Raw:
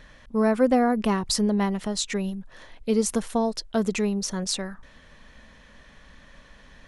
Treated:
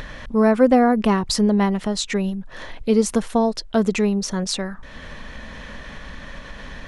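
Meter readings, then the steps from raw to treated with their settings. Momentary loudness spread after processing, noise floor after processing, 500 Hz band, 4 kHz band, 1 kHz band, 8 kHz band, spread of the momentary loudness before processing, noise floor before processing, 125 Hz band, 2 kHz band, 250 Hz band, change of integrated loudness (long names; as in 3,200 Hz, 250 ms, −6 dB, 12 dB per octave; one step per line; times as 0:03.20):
22 LU, −38 dBFS, +5.5 dB, +3.0 dB, +5.5 dB, +1.0 dB, 10 LU, −52 dBFS, +5.5 dB, +5.5 dB, +5.5 dB, +5.0 dB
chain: high-shelf EQ 6,600 Hz −8.5 dB
upward compression, threshold −30 dBFS
level +5.5 dB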